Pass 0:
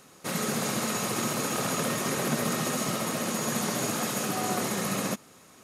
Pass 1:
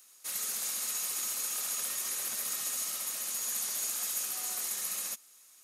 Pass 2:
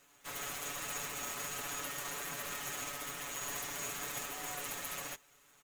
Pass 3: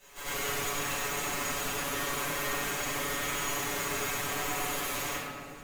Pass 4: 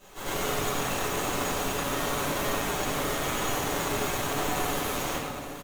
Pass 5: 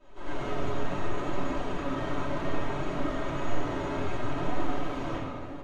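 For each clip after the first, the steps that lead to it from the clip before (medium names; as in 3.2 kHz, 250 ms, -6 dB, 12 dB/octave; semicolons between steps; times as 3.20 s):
differentiator
median filter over 9 samples; comb 7 ms, depth 95%
compression, threshold -42 dBFS, peak gain reduction 6.5 dB; reverse echo 95 ms -5 dB; reverberation RT60 2.0 s, pre-delay 5 ms, DRR -13 dB
in parallel at 0 dB: sample-rate reducer 2.5 kHz, jitter 0%; on the sum: delay 859 ms -14 dB
flange 0.65 Hz, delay 3 ms, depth 9.7 ms, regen +47%; tape spacing loss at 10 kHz 29 dB; simulated room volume 2600 m³, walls furnished, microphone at 2.8 m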